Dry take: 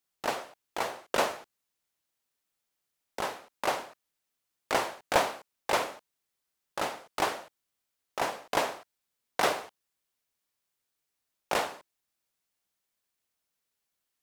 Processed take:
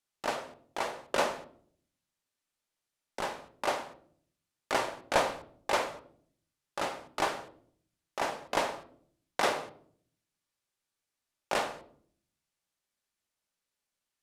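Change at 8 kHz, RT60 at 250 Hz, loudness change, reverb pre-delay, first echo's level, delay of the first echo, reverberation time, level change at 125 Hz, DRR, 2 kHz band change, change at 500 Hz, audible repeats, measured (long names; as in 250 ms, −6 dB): −2.5 dB, 0.85 s, −1.5 dB, 3 ms, no echo audible, no echo audible, 0.60 s, −1.0 dB, 8.5 dB, −1.5 dB, −1.0 dB, no echo audible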